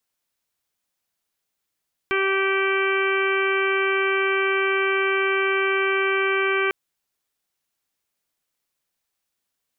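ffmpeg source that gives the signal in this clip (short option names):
-f lavfi -i "aevalsrc='0.075*sin(2*PI*388*t)+0.015*sin(2*PI*776*t)+0.0447*sin(2*PI*1164*t)+0.0501*sin(2*PI*1552*t)+0.0266*sin(2*PI*1940*t)+0.0562*sin(2*PI*2328*t)+0.015*sin(2*PI*2716*t)+0.0168*sin(2*PI*3104*t)':d=4.6:s=44100"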